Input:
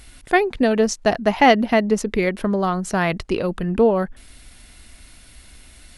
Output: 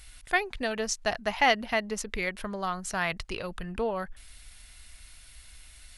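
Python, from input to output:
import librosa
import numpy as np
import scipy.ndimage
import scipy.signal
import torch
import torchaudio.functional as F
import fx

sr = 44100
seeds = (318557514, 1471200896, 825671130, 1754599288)

y = fx.peak_eq(x, sr, hz=280.0, db=-14.5, octaves=2.6)
y = y * 10.0 ** (-3.5 / 20.0)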